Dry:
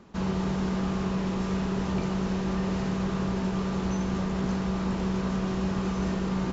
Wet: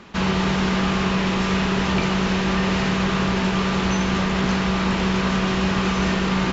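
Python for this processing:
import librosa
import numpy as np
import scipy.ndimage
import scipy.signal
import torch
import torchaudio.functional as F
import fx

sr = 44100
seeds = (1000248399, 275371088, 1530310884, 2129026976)

y = fx.peak_eq(x, sr, hz=2600.0, db=11.5, octaves=2.4)
y = y * 10.0 ** (6.0 / 20.0)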